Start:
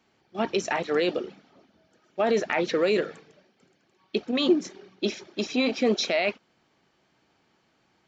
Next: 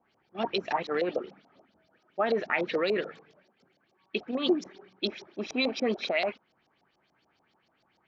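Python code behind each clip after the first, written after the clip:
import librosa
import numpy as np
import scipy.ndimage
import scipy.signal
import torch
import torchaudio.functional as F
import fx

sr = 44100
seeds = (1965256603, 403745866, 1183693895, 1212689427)

y = fx.filter_lfo_lowpass(x, sr, shape='saw_up', hz=6.9, low_hz=620.0, high_hz=5900.0, q=3.2)
y = y * librosa.db_to_amplitude(-6.0)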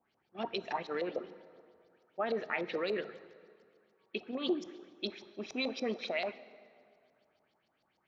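y = fx.rev_plate(x, sr, seeds[0], rt60_s=2.4, hf_ratio=0.65, predelay_ms=0, drr_db=15.0)
y = y * librosa.db_to_amplitude(-7.0)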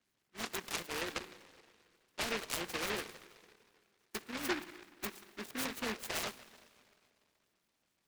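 y = fx.noise_mod_delay(x, sr, seeds[1], noise_hz=1600.0, depth_ms=0.39)
y = y * librosa.db_to_amplitude(-3.5)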